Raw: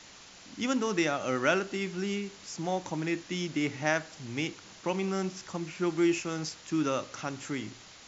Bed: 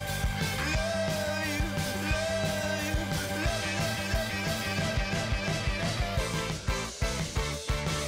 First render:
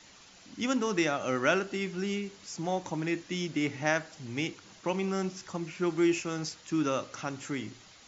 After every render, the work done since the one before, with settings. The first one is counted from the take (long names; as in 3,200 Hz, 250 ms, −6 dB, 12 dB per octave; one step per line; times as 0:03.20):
broadband denoise 6 dB, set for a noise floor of −52 dBFS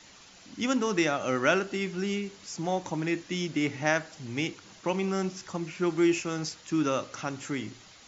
level +2 dB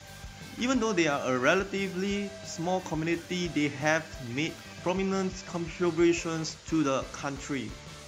mix in bed −15 dB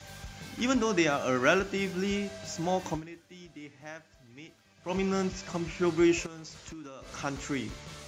0:02.95–0:04.93: duck −18 dB, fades 0.44 s exponential
0:06.26–0:07.15: downward compressor 16 to 1, threshold −40 dBFS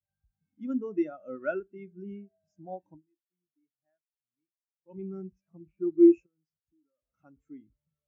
every bin expanded away from the loudest bin 2.5 to 1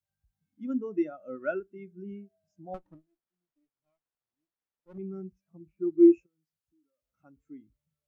0:02.74–0:04.98: windowed peak hold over 17 samples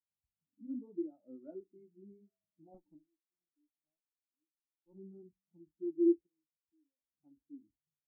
formant resonators in series u
flanger 0.76 Hz, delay 7.5 ms, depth 7 ms, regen −40%